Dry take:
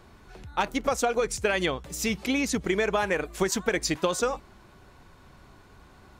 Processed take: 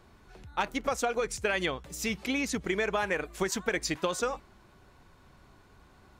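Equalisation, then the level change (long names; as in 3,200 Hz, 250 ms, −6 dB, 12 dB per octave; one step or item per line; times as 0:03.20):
dynamic equaliser 1,900 Hz, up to +3 dB, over −39 dBFS, Q 0.74
−5.0 dB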